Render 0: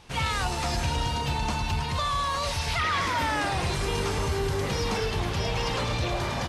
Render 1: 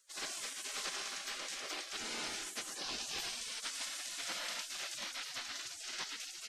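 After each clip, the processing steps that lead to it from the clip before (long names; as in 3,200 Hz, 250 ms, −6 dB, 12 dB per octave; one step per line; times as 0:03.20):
gate on every frequency bin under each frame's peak −25 dB weak
parametric band 11,000 Hz −7 dB 0.33 octaves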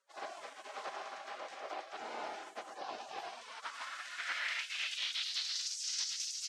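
band-pass filter sweep 740 Hz → 5,600 Hz, 0:03.28–0:05.75
level +10 dB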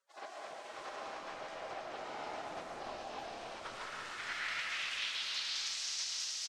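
on a send: echo with shifted repeats 282 ms, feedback 61%, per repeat −130 Hz, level −7 dB
on the sum: comb and all-pass reverb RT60 1.5 s, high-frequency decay 0.7×, pre-delay 90 ms, DRR 0.5 dB
level −3.5 dB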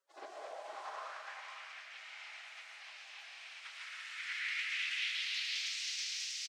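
in parallel at −10.5 dB: soft clipping −36 dBFS, distortion −14 dB
on the sum: high-pass filter sweep 320 Hz → 2,200 Hz, 0:00.19–0:01.49
single-tap delay 504 ms −7 dB
level −6 dB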